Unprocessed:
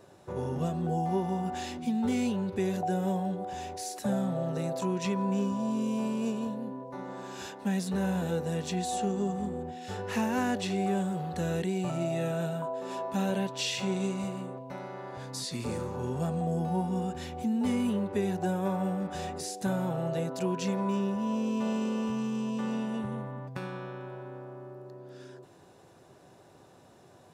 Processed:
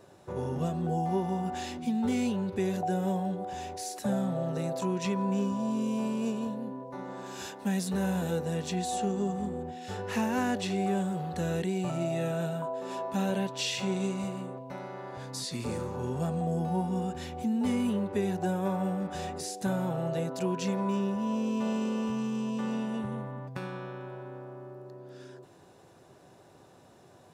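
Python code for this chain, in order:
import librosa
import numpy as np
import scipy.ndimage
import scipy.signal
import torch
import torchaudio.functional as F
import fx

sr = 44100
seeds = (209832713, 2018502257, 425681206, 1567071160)

y = fx.high_shelf(x, sr, hz=6900.0, db=6.0, at=(7.26, 8.39))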